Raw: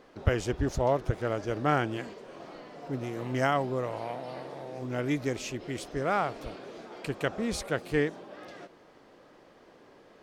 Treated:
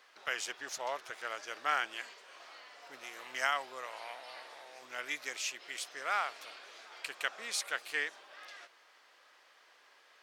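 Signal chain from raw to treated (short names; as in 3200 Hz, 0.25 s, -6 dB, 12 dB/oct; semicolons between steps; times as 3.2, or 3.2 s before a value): HPF 1500 Hz 12 dB/oct; gain +2.5 dB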